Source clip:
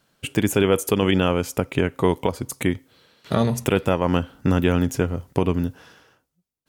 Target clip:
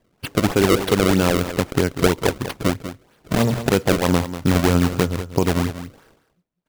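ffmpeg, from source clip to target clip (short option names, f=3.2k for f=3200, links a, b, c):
-filter_complex "[0:a]equalizer=f=4.2k:t=o:w=0.95:g=-5,acrusher=samples=30:mix=1:aa=0.000001:lfo=1:lforange=48:lforate=3.1,asplit=2[a][b];[b]aecho=0:1:193:0.266[c];[a][c]amix=inputs=2:normalize=0,volume=2dB"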